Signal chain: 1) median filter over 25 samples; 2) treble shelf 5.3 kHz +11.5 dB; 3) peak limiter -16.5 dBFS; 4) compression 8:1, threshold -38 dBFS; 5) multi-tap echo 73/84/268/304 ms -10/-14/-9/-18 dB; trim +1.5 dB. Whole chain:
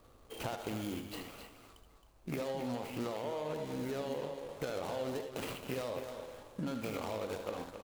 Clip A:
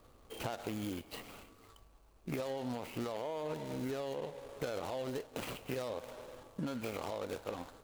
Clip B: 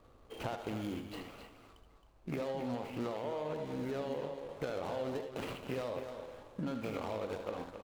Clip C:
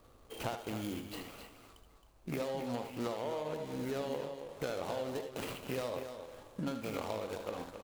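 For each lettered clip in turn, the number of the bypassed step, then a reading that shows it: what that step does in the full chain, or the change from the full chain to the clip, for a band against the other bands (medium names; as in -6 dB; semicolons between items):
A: 5, echo-to-direct -5.5 dB to none; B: 2, 8 kHz band -7.5 dB; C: 3, mean gain reduction 2.5 dB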